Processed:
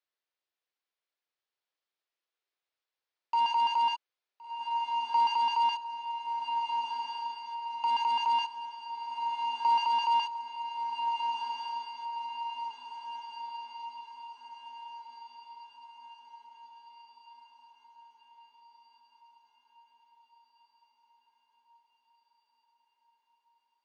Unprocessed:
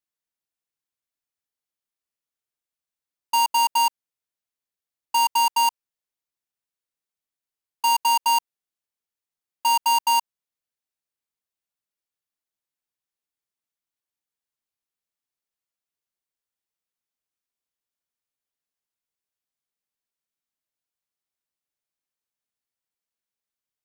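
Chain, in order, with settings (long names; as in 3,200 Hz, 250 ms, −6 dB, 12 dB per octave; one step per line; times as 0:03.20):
high-pass filter 360 Hz 24 dB per octave
reverb whose tail is shaped and stops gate 90 ms rising, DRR 9 dB
soft clipping −25 dBFS, distortion −6 dB
low-pass filter 4,800 Hz 24 dB per octave
feedback delay with all-pass diffusion 1,446 ms, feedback 58%, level −5 dB
level +2 dB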